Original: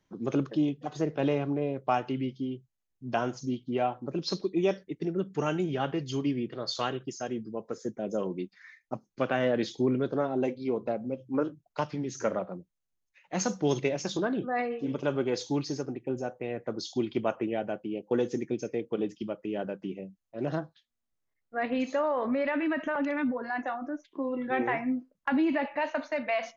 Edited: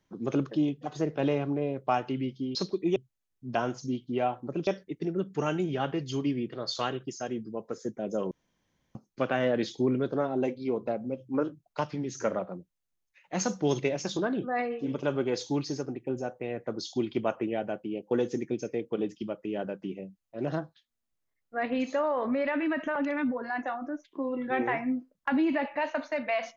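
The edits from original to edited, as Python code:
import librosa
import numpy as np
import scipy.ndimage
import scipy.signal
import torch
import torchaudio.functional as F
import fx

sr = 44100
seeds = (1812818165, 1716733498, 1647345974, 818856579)

y = fx.edit(x, sr, fx.move(start_s=4.26, length_s=0.41, to_s=2.55),
    fx.room_tone_fill(start_s=8.31, length_s=0.64), tone=tone)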